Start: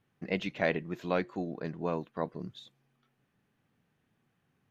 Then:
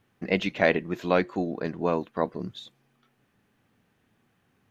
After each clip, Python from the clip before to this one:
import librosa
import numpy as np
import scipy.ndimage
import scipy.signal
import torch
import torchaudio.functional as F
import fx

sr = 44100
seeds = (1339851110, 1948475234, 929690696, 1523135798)

y = fx.peak_eq(x, sr, hz=150.0, db=-8.0, octaves=0.28)
y = y * librosa.db_to_amplitude(7.5)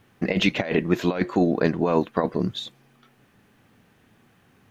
y = fx.over_compress(x, sr, threshold_db=-26.0, ratio=-0.5)
y = y * librosa.db_to_amplitude(7.0)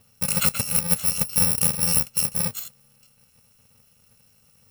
y = fx.bit_reversed(x, sr, seeds[0], block=128)